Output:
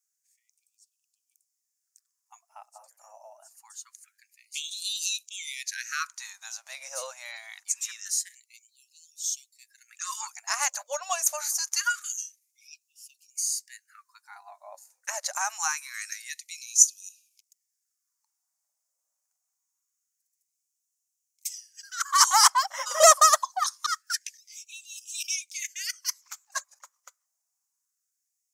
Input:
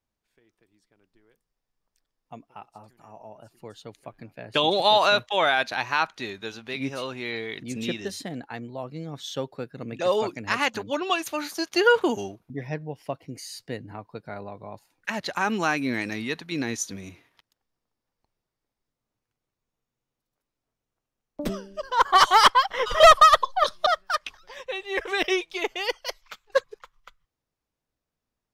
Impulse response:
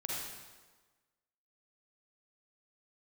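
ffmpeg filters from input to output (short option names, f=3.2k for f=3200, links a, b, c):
-filter_complex "[0:a]highshelf=f=4.8k:t=q:w=3:g=13,acrossover=split=300[a][b];[a]acompressor=threshold=-36dB:ratio=3[c];[c][b]amix=inputs=2:normalize=0,afftfilt=real='re*gte(b*sr/1024,510*pow(2500/510,0.5+0.5*sin(2*PI*0.25*pts/sr)))':imag='im*gte(b*sr/1024,510*pow(2500/510,0.5+0.5*sin(2*PI*0.25*pts/sr)))':win_size=1024:overlap=0.75,volume=-4dB"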